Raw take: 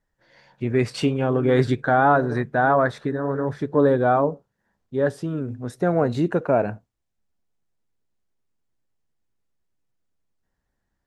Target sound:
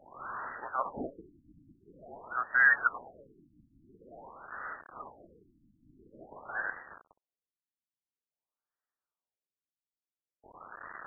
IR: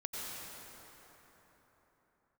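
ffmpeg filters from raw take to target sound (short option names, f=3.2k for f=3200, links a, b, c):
-filter_complex "[0:a]aeval=exprs='val(0)+0.5*0.0316*sgn(val(0))':c=same,asplit=2[a][b];[b]acrusher=bits=4:mix=0:aa=0.000001,volume=-8.5dB[c];[a][c]amix=inputs=2:normalize=0,lowpass=f=2.6k:t=q:w=0.5098,lowpass=f=2.6k:t=q:w=0.6013,lowpass=f=2.6k:t=q:w=0.9,lowpass=f=2.6k:t=q:w=2.563,afreqshift=-3100,afftfilt=real='re*lt(b*sr/1024,300*pow(2000/300,0.5+0.5*sin(2*PI*0.48*pts/sr)))':imag='im*lt(b*sr/1024,300*pow(2000/300,0.5+0.5*sin(2*PI*0.48*pts/sr)))':win_size=1024:overlap=0.75"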